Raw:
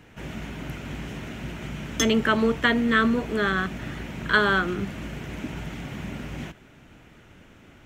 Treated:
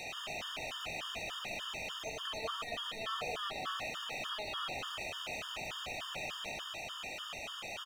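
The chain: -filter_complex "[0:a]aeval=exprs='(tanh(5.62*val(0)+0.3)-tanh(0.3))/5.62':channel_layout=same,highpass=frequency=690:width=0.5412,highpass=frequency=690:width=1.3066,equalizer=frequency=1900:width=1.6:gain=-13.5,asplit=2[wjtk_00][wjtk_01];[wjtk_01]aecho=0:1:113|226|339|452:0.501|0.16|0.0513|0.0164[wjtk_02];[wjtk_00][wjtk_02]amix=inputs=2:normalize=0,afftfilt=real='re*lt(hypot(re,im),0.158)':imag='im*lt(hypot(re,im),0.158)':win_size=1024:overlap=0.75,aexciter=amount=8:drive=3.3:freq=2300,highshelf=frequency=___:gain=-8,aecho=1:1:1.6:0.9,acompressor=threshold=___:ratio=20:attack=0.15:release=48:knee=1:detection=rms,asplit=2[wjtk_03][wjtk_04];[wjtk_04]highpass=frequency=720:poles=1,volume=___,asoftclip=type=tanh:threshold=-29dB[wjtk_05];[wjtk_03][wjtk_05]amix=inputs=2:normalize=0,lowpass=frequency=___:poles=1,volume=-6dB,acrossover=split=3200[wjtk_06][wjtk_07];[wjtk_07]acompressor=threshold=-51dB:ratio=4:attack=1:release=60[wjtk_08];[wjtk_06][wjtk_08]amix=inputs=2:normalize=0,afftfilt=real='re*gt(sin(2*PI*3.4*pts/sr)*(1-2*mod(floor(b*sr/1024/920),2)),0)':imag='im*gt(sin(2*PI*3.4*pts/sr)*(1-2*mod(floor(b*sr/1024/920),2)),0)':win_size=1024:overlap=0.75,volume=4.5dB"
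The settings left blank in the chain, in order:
5600, -32dB, 27dB, 1500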